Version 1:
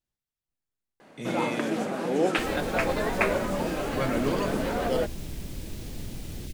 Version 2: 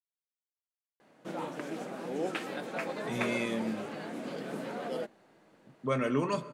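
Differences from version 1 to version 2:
speech: entry +1.90 s; first sound -9.5 dB; second sound: muted

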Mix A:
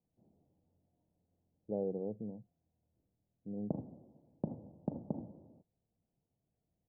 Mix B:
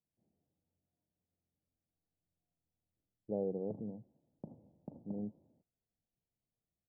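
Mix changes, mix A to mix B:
speech: entry +1.60 s; background -11.0 dB

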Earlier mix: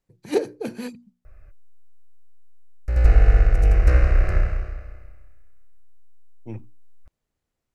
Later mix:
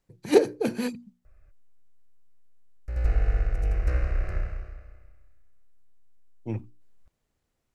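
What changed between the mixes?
speech +3.5 dB; background -9.5 dB

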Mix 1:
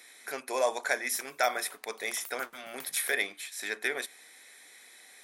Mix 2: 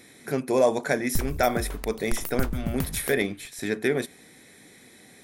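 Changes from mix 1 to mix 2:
background +9.0 dB; master: remove HPF 860 Hz 12 dB/oct

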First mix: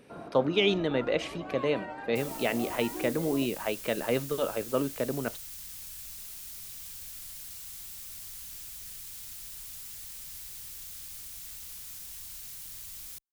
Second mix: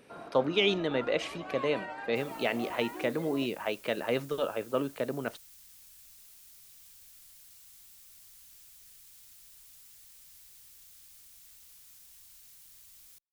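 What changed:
first sound: add tilt shelf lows -3.5 dB, about 780 Hz; second sound -11.5 dB; master: add low shelf 310 Hz -5 dB

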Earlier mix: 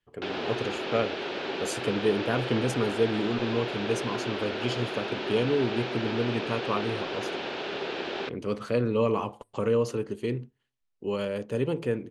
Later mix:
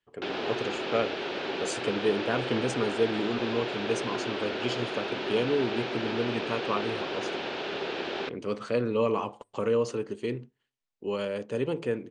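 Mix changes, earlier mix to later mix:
speech: add low shelf 120 Hz -11.5 dB; master: add steep low-pass 9100 Hz 48 dB/oct

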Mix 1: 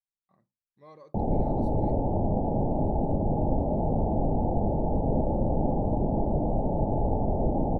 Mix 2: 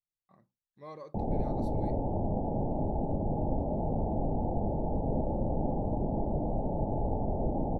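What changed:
speech +5.0 dB; background -5.0 dB

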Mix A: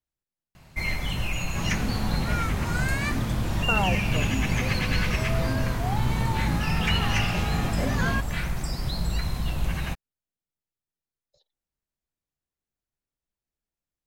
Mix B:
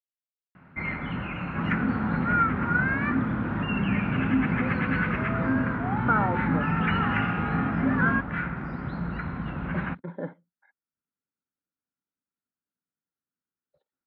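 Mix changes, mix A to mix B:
speech: entry +2.40 s; master: add speaker cabinet 110–2100 Hz, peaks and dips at 120 Hz -3 dB, 180 Hz +4 dB, 260 Hz +8 dB, 660 Hz -4 dB, 1400 Hz +10 dB

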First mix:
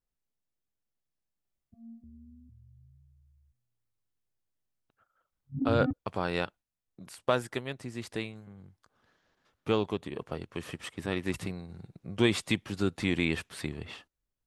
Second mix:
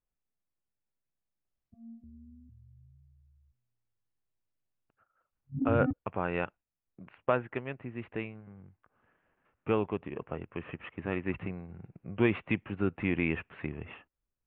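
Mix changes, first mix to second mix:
speech: add elliptic low-pass 2700 Hz, stop band 50 dB; master: add air absorption 71 m

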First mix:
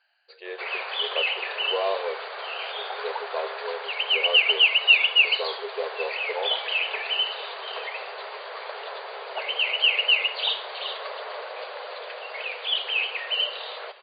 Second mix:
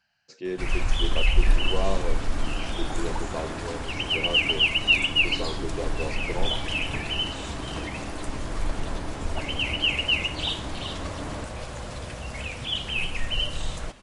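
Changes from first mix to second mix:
speech -3.5 dB; first sound -3.5 dB; master: remove brick-wall FIR band-pass 390–4800 Hz

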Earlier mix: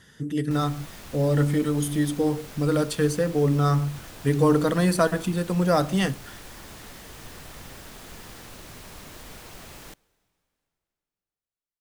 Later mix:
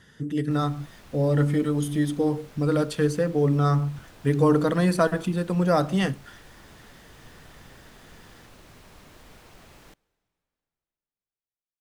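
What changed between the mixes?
background -6.0 dB; master: add high shelf 5200 Hz -7.5 dB

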